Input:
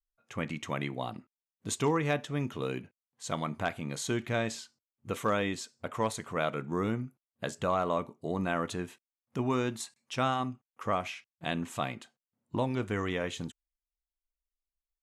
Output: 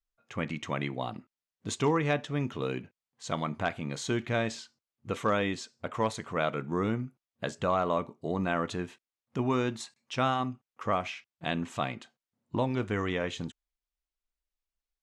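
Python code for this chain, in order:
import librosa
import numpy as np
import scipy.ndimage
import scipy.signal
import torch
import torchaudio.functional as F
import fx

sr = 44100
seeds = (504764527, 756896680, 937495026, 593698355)

y = scipy.signal.sosfilt(scipy.signal.butter(2, 6400.0, 'lowpass', fs=sr, output='sos'), x)
y = y * 10.0 ** (1.5 / 20.0)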